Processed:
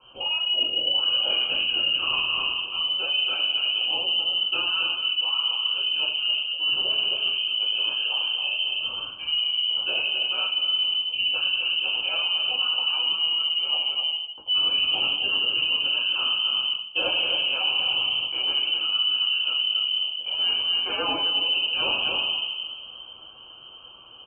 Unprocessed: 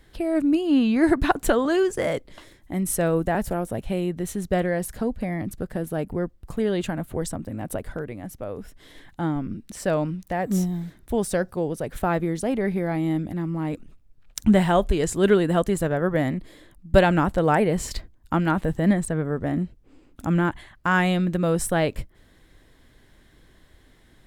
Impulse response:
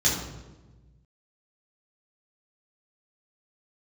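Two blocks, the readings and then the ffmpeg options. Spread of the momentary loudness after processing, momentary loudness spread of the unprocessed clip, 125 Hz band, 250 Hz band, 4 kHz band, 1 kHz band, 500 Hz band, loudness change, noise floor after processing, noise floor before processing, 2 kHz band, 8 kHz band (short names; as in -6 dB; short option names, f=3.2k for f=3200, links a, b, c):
4 LU, 12 LU, under -25 dB, -24.5 dB, +23.5 dB, -8.5 dB, -16.5 dB, +2.0 dB, -45 dBFS, -56 dBFS, +3.5 dB, under -40 dB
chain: -filter_complex "[1:a]atrim=start_sample=2205,asetrate=33957,aresample=44100[a];[0:a][a]afir=irnorm=-1:irlink=0,acrossover=split=480[b][c];[b]volume=-6dB,asoftclip=hard,volume=6dB[d];[d][c]amix=inputs=2:normalize=0,highpass=f=260:p=1,flanger=delay=8.4:depth=2.4:regen=-26:speed=1.1:shape=triangular,lowpass=f=2.7k:t=q:w=0.5098,lowpass=f=2.7k:t=q:w=0.6013,lowpass=f=2.7k:t=q:w=0.9,lowpass=f=2.7k:t=q:w=2.563,afreqshift=-3200,asuperstop=centerf=1900:order=4:qfactor=0.77,aecho=1:1:265:0.376,areverse,acompressor=threshold=-29dB:ratio=6,areverse,volume=6.5dB"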